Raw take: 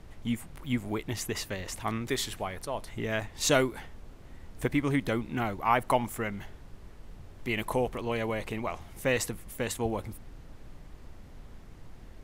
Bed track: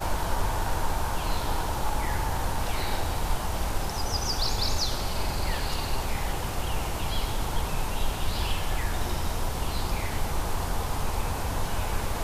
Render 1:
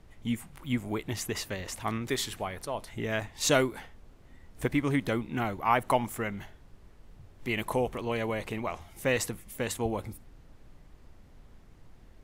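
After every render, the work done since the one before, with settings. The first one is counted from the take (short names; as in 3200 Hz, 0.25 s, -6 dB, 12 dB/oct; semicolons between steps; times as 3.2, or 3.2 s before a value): noise print and reduce 6 dB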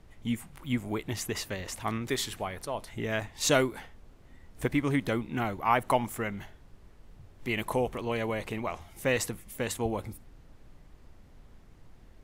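nothing audible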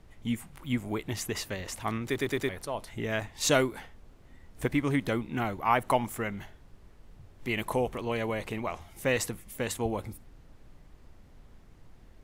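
2.05 stutter in place 0.11 s, 4 plays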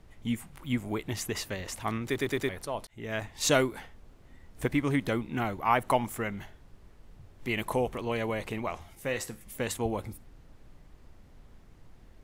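2.87–3.38 fade in equal-power; 8.95–9.41 resonator 74 Hz, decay 0.34 s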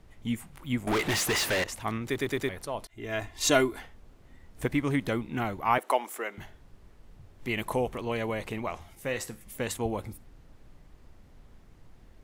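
0.87–1.64 overdrive pedal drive 31 dB, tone 6000 Hz, clips at -19.5 dBFS; 2.84–3.82 comb 2.9 ms, depth 55%; 5.78–6.38 HPF 340 Hz 24 dB/oct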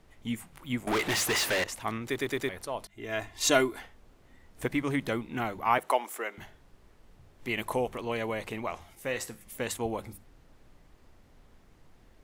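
low shelf 230 Hz -5 dB; notches 50/100/150/200 Hz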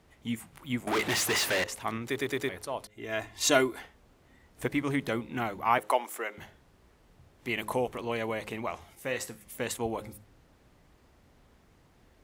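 HPF 43 Hz; de-hum 105.7 Hz, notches 5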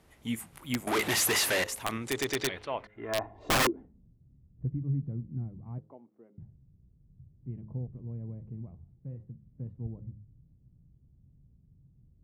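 low-pass sweep 12000 Hz -> 140 Hz, 1.93–4.15; wrapped overs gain 19.5 dB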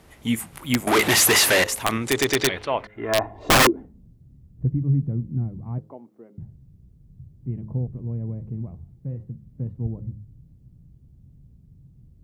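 gain +10 dB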